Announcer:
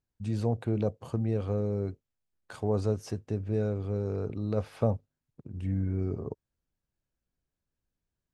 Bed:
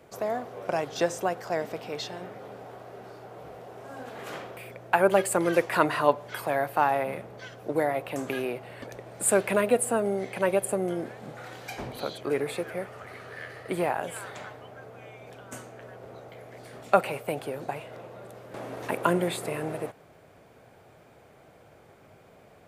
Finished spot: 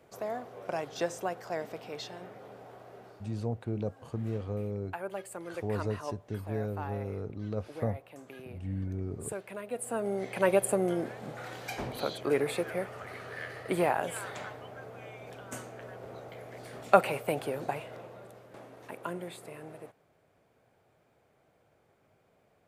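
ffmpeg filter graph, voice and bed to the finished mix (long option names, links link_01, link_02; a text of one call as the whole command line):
ffmpeg -i stem1.wav -i stem2.wav -filter_complex "[0:a]adelay=3000,volume=-5dB[link_01];[1:a]volume=11dB,afade=type=out:start_time=2.96:duration=0.51:silence=0.281838,afade=type=in:start_time=9.68:duration=0.82:silence=0.141254,afade=type=out:start_time=17.67:duration=1.04:silence=0.211349[link_02];[link_01][link_02]amix=inputs=2:normalize=0" out.wav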